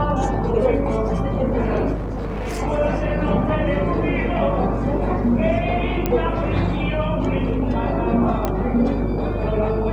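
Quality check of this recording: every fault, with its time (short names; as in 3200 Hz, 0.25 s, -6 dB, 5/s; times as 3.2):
buzz 50 Hz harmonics 30 -25 dBFS
1.94–2.6 clipped -23 dBFS
6.06 pop -7 dBFS
8.45 pop -8 dBFS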